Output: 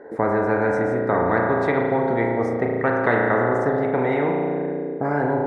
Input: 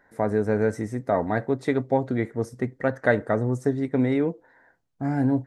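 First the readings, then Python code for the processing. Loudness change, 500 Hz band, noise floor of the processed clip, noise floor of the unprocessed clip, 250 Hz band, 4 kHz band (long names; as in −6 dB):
+4.0 dB, +5.0 dB, −28 dBFS, −66 dBFS, +1.0 dB, can't be measured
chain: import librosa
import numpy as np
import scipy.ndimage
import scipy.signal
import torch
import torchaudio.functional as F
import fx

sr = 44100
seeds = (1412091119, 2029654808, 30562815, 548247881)

y = fx.bandpass_q(x, sr, hz=430.0, q=4.4)
y = fx.rev_spring(y, sr, rt60_s=1.7, pass_ms=(34,), chirp_ms=25, drr_db=0.5)
y = fx.spectral_comp(y, sr, ratio=4.0)
y = y * 10.0 ** (7.0 / 20.0)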